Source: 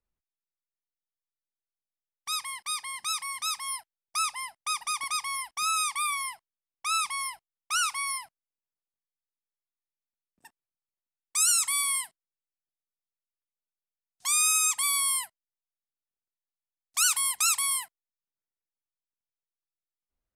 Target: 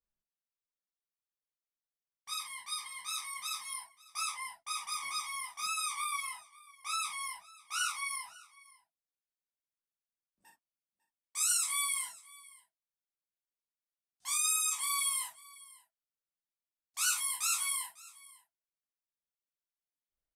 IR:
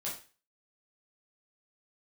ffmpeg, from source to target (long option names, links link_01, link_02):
-filter_complex "[0:a]aecho=1:1:549:0.0841[link_01];[1:a]atrim=start_sample=2205,atrim=end_sample=3969[link_02];[link_01][link_02]afir=irnorm=-1:irlink=0,volume=-8dB"